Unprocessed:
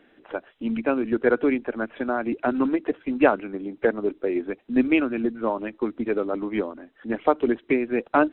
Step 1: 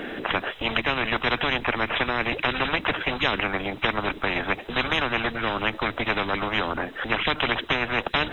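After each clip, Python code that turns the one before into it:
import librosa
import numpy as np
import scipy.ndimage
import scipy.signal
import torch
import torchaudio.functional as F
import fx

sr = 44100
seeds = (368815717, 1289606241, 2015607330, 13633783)

y = fx.spectral_comp(x, sr, ratio=10.0)
y = F.gain(torch.from_numpy(y), -1.5).numpy()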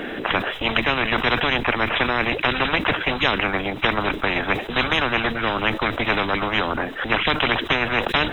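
y = fx.sustainer(x, sr, db_per_s=120.0)
y = F.gain(torch.from_numpy(y), 3.5).numpy()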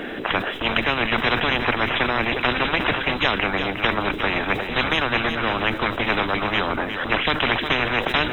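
y = x + 10.0 ** (-8.0 / 20.0) * np.pad(x, (int(359 * sr / 1000.0), 0))[:len(x)]
y = F.gain(torch.from_numpy(y), -1.0).numpy()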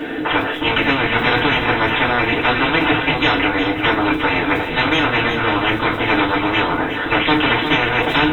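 y = fx.rev_fdn(x, sr, rt60_s=0.3, lf_ratio=1.0, hf_ratio=0.8, size_ms=20.0, drr_db=-6.5)
y = F.gain(torch.from_numpy(y), -2.5).numpy()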